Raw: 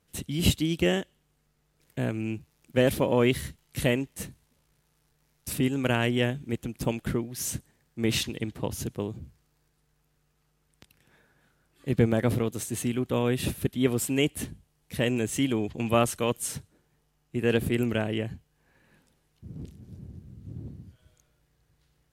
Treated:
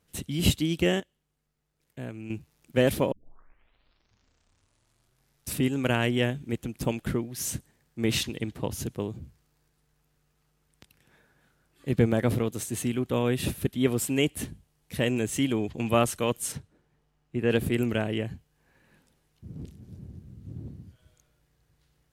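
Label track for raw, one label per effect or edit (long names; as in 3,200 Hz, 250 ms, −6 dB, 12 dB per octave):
1.000000	2.300000	clip gain −8.5 dB
3.120000	3.120000	tape start 2.37 s
16.520000	17.510000	low-pass filter 3,000 Hz 6 dB per octave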